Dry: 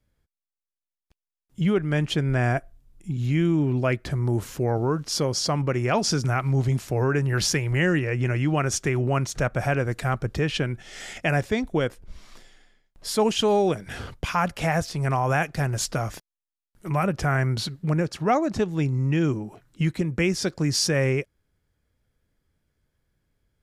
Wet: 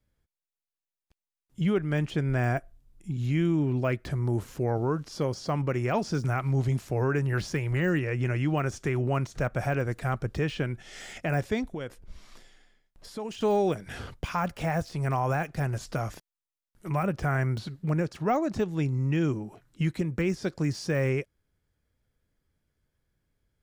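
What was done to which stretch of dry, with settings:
11.7–13.41 compressor, threshold -28 dBFS
whole clip: de-esser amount 100%; gain -3.5 dB

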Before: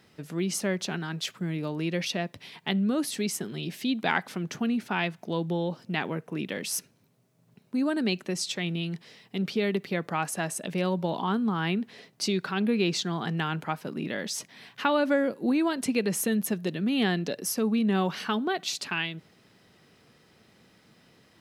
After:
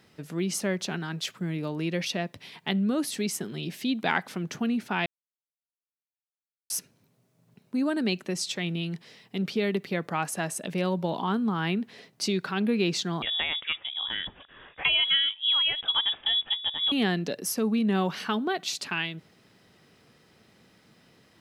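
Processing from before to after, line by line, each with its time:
5.06–6.7 mute
13.22–16.92 inverted band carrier 3600 Hz

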